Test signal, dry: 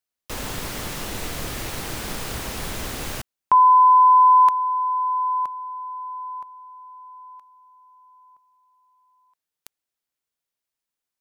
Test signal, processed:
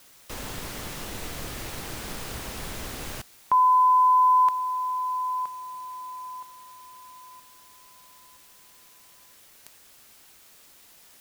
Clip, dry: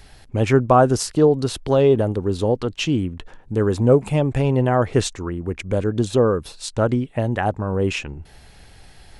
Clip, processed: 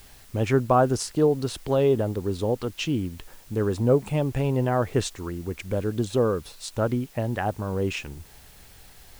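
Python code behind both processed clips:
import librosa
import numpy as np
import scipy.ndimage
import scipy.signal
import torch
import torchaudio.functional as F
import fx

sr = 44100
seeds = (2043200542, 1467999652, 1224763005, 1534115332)

y = fx.quant_dither(x, sr, seeds[0], bits=8, dither='triangular')
y = y * 10.0 ** (-5.5 / 20.0)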